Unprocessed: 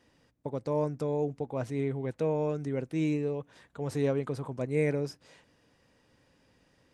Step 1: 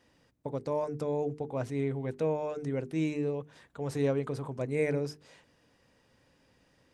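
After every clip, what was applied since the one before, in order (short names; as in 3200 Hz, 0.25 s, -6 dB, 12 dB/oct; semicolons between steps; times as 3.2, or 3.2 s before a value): notches 50/100/150/200/250/300/350/400/450 Hz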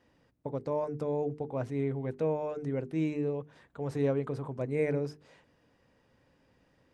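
high shelf 3300 Hz -10 dB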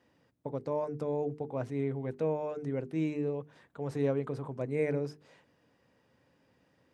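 HPF 90 Hz; gain -1 dB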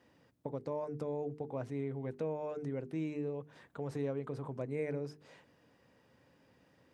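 compressor 2:1, threshold -42 dBFS, peak gain reduction 9.5 dB; gain +2 dB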